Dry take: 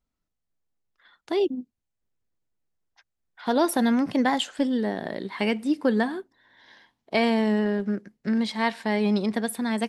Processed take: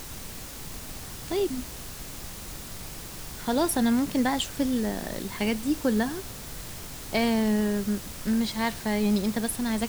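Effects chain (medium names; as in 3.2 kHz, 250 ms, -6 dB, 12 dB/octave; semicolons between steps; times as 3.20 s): added noise pink -39 dBFS; tone controls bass +5 dB, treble +7 dB; trim -4 dB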